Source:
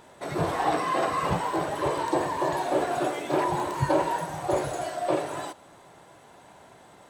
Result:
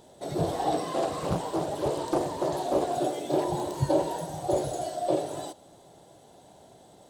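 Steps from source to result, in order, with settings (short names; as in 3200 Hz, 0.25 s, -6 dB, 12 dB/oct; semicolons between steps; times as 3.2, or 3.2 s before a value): band shelf 1600 Hz -12 dB; 0.92–2.95 Doppler distortion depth 0.87 ms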